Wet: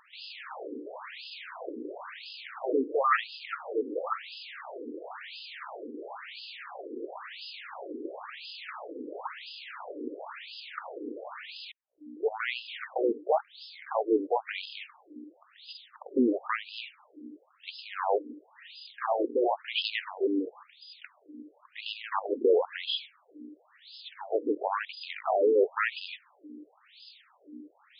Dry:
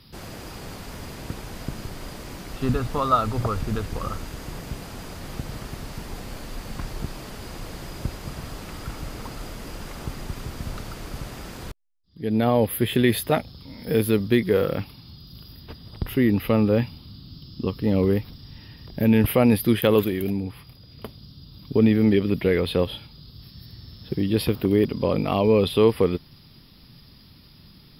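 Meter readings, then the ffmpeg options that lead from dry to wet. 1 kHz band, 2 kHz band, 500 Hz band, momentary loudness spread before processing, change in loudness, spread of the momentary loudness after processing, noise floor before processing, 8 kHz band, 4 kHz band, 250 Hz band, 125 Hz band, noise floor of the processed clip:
−2.0 dB, −2.0 dB, −6.0 dB, 19 LU, −9.5 dB, 22 LU, −50 dBFS, below −40 dB, −2.5 dB, −13.0 dB, below −40 dB, −64 dBFS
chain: -af "aeval=exprs='val(0)+0.0178*(sin(2*PI*60*n/s)+sin(2*PI*2*60*n/s)/2+sin(2*PI*3*60*n/s)/3+sin(2*PI*4*60*n/s)/4+sin(2*PI*5*60*n/s)/5)':channel_layout=same,aeval=exprs='0.473*sin(PI/2*3.55*val(0)/0.473)':channel_layout=same,afftfilt=real='re*between(b*sr/1024,350*pow(3700/350,0.5+0.5*sin(2*PI*0.97*pts/sr))/1.41,350*pow(3700/350,0.5+0.5*sin(2*PI*0.97*pts/sr))*1.41)':imag='im*between(b*sr/1024,350*pow(3700/350,0.5+0.5*sin(2*PI*0.97*pts/sr))/1.41,350*pow(3700/350,0.5+0.5*sin(2*PI*0.97*pts/sr))*1.41)':win_size=1024:overlap=0.75,volume=-9dB"

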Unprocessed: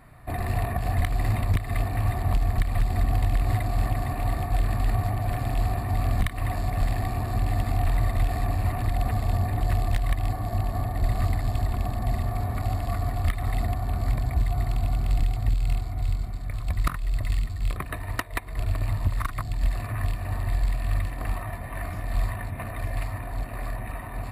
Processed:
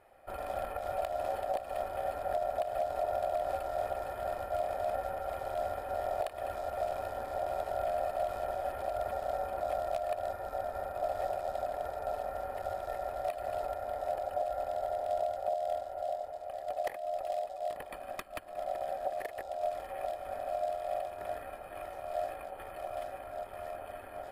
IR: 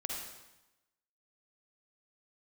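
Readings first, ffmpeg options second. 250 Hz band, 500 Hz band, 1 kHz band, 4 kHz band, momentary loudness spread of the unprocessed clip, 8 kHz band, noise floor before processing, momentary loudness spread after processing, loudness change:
−19.0 dB, +5.5 dB, −0.5 dB, −10.5 dB, 7 LU, below −10 dB, −35 dBFS, 8 LU, −8.5 dB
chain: -af "bandreject=frequency=2100:width=5.7,aeval=exprs='val(0)*sin(2*PI*660*n/s)':channel_layout=same,volume=-8.5dB"

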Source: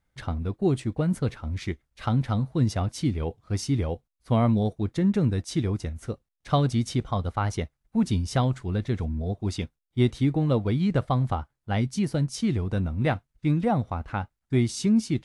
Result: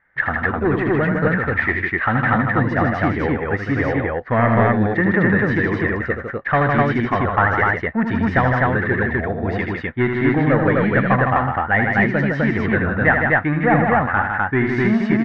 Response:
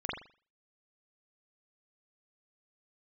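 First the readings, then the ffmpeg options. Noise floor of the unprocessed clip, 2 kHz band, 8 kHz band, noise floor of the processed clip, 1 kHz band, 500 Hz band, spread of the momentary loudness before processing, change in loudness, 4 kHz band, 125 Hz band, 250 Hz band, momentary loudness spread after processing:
−81 dBFS, +23.0 dB, below −15 dB, −29 dBFS, +13.5 dB, +10.5 dB, 9 LU, +8.5 dB, −1.5 dB, +4.0 dB, +6.5 dB, 5 LU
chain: -filter_complex "[0:a]asplit=2[link_01][link_02];[link_02]highpass=frequency=720:poles=1,volume=19dB,asoftclip=type=tanh:threshold=-10dB[link_03];[link_01][link_03]amix=inputs=2:normalize=0,lowpass=frequency=1400:poles=1,volume=-6dB,lowpass=frequency=1800:width_type=q:width=9.8,aecho=1:1:78.72|157.4|253.6:0.501|0.562|0.891,volume=1dB"

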